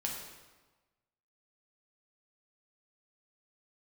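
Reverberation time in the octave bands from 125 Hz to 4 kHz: 1.3, 1.3, 1.2, 1.3, 1.1, 1.0 s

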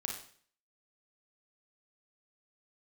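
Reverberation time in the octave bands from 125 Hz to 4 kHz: 0.55, 0.55, 0.50, 0.50, 0.50, 0.50 s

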